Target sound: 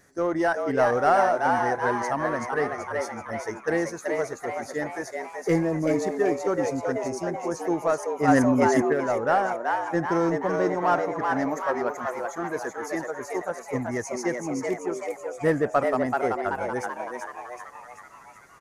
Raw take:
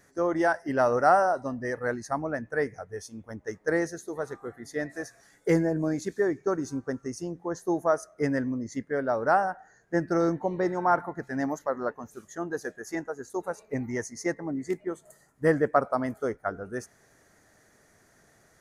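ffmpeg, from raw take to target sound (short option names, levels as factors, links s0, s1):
-filter_complex "[0:a]asplit=2[s0][s1];[s1]volume=16.8,asoftclip=hard,volume=0.0596,volume=0.447[s2];[s0][s2]amix=inputs=2:normalize=0,asplit=9[s3][s4][s5][s6][s7][s8][s9][s10][s11];[s4]adelay=381,afreqshift=120,volume=0.631[s12];[s5]adelay=762,afreqshift=240,volume=0.355[s13];[s6]adelay=1143,afreqshift=360,volume=0.197[s14];[s7]adelay=1524,afreqshift=480,volume=0.111[s15];[s8]adelay=1905,afreqshift=600,volume=0.0624[s16];[s9]adelay=2286,afreqshift=720,volume=0.0347[s17];[s10]adelay=2667,afreqshift=840,volume=0.0195[s18];[s11]adelay=3048,afreqshift=960,volume=0.0108[s19];[s3][s12][s13][s14][s15][s16][s17][s18][s19]amix=inputs=9:normalize=0,asplit=3[s20][s21][s22];[s20]afade=t=out:st=8.27:d=0.02[s23];[s21]acontrast=83,afade=t=in:st=8.27:d=0.02,afade=t=out:st=8.92:d=0.02[s24];[s22]afade=t=in:st=8.92:d=0.02[s25];[s23][s24][s25]amix=inputs=3:normalize=0,volume=0.841"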